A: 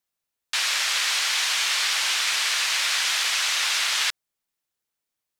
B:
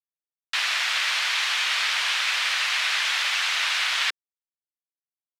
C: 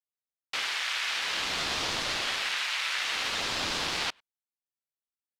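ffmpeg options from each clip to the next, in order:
-filter_complex "[0:a]afreqshift=94,aeval=exprs='sgn(val(0))*max(abs(val(0))-0.00224,0)':c=same,acrossover=split=330 3900:gain=0.126 1 0.251[a][b][c];[a][b][c]amix=inputs=3:normalize=0,volume=2.5dB"
-filter_complex "[0:a]asplit=2[a][b];[b]adelay=100,highpass=300,lowpass=3.4k,asoftclip=type=hard:threshold=-21.5dB,volume=-30dB[c];[a][c]amix=inputs=2:normalize=0,aeval=exprs='val(0)*sin(2*PI*700*n/s+700*0.8/0.54*sin(2*PI*0.54*n/s))':c=same,volume=-3.5dB"

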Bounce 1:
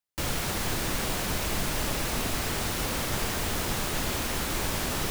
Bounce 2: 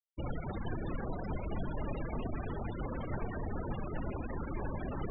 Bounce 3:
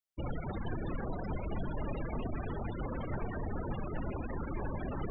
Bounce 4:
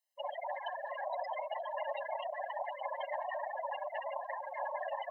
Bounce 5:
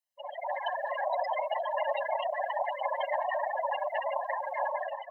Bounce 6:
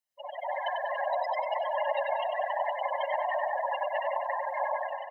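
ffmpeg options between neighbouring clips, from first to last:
-af "afftfilt=real='re*gte(hypot(re,im),0.0562)':imag='im*gte(hypot(re,im),0.0562)':win_size=1024:overlap=0.75,volume=-4.5dB"
-af "asoftclip=type=tanh:threshold=-24dB,volume=1dB"
-af "afftfilt=real='re*eq(mod(floor(b*sr/1024/540),2),1)':imag='im*eq(mod(floor(b*sr/1024/540),2),1)':win_size=1024:overlap=0.75,volume=8dB"
-af "dynaudnorm=f=120:g=7:m=11.5dB,volume=-4dB"
-af "aecho=1:1:96|192|288|384|480:0.501|0.221|0.097|0.0427|0.0188"

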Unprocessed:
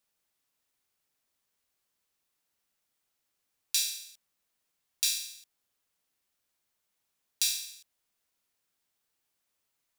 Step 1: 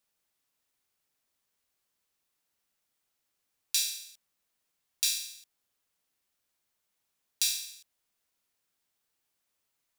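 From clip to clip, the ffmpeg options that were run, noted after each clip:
-af anull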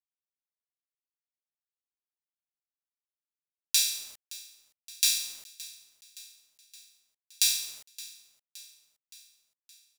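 -af "acrusher=bits=8:mix=0:aa=0.000001,aecho=1:1:569|1138|1707|2276|2845:0.112|0.0662|0.0391|0.023|0.0136,volume=4dB"

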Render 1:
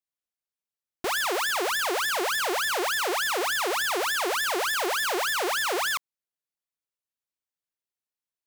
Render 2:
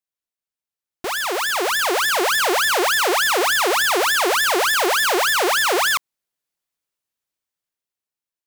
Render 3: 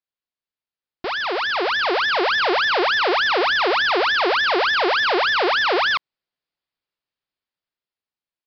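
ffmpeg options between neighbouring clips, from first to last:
-af "dynaudnorm=f=610:g=5:m=8.5dB"
-af "aresample=11025,aresample=44100"

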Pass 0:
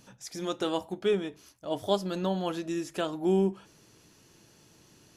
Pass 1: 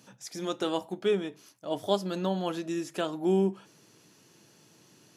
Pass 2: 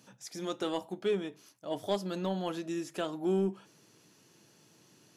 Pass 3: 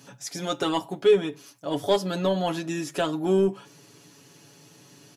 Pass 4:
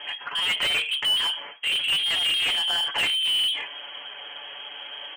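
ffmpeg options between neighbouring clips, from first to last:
-af "highpass=f=120:w=0.5412,highpass=f=120:w=1.3066"
-af "asoftclip=type=tanh:threshold=-16.5dB,volume=-3dB"
-af "aecho=1:1:7.1:0.72,volume=8dB"
-filter_complex "[0:a]lowpass=f=2.9k:t=q:w=0.5098,lowpass=f=2.9k:t=q:w=0.6013,lowpass=f=2.9k:t=q:w=0.9,lowpass=f=2.9k:t=q:w=2.563,afreqshift=-3400,flanger=delay=3.1:depth=2.7:regen=-64:speed=0.8:shape=sinusoidal,asplit=2[a][b];[b]highpass=f=720:p=1,volume=32dB,asoftclip=type=tanh:threshold=-11.5dB[c];[a][c]amix=inputs=2:normalize=0,lowpass=f=1.7k:p=1,volume=-6dB"

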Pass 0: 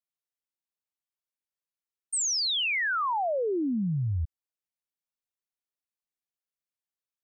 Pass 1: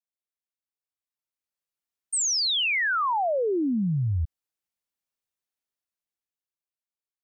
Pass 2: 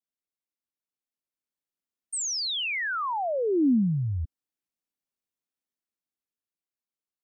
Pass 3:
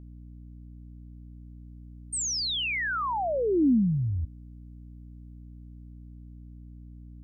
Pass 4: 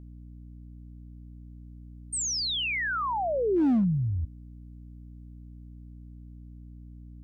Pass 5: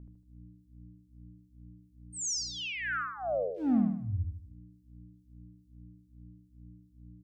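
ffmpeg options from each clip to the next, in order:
-af "dynaudnorm=f=220:g=13:m=10dB,volume=-7dB"
-af "equalizer=f=260:t=o:w=1.3:g=9.5,volume=-5dB"
-af "aeval=exprs='val(0)+0.00631*(sin(2*PI*60*n/s)+sin(2*PI*2*60*n/s)/2+sin(2*PI*3*60*n/s)/3+sin(2*PI*4*60*n/s)/4+sin(2*PI*5*60*n/s)/5)':c=same"
-af "asoftclip=type=hard:threshold=-20dB"
-filter_complex "[0:a]acrossover=split=2500[a][b];[a]aeval=exprs='val(0)*(1-1/2+1/2*cos(2*PI*2.4*n/s))':c=same[c];[b]aeval=exprs='val(0)*(1-1/2-1/2*cos(2*PI*2.4*n/s))':c=same[d];[c][d]amix=inputs=2:normalize=0,asplit=2[e][f];[f]aecho=0:1:77|154|231|308|385:0.668|0.287|0.124|0.0531|0.0228[g];[e][g]amix=inputs=2:normalize=0,volume=-3dB"

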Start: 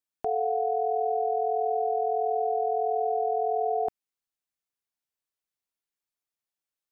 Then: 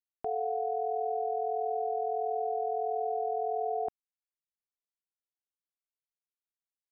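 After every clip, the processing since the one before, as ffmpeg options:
-af "anlmdn=3.98,volume=-5dB"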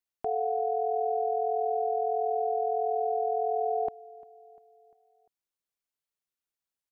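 -af "aecho=1:1:348|696|1044|1392:0.0794|0.0429|0.0232|0.0125,volume=3dB"

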